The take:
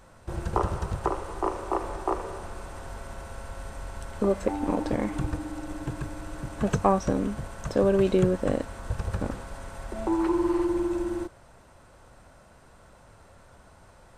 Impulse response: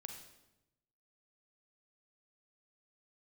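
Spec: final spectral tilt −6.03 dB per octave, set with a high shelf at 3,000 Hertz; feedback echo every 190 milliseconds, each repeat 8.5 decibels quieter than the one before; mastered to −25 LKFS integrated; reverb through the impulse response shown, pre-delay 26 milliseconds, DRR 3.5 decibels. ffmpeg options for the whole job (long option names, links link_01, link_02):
-filter_complex "[0:a]highshelf=frequency=3000:gain=-6.5,aecho=1:1:190|380|570|760:0.376|0.143|0.0543|0.0206,asplit=2[link_01][link_02];[1:a]atrim=start_sample=2205,adelay=26[link_03];[link_02][link_03]afir=irnorm=-1:irlink=0,volume=1dB[link_04];[link_01][link_04]amix=inputs=2:normalize=0,volume=1.5dB"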